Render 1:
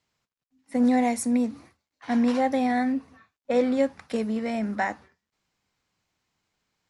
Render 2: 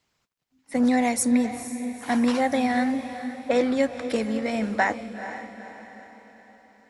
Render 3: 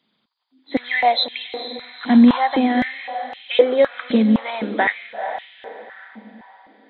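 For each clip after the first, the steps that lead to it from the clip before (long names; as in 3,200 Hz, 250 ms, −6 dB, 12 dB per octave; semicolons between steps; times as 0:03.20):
harmonic and percussive parts rebalanced percussive +7 dB; on a send: feedback delay with all-pass diffusion 465 ms, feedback 47%, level −11 dB
hearing-aid frequency compression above 3,000 Hz 4 to 1; high-pass on a step sequencer 3.9 Hz 210–2,900 Hz; level +2 dB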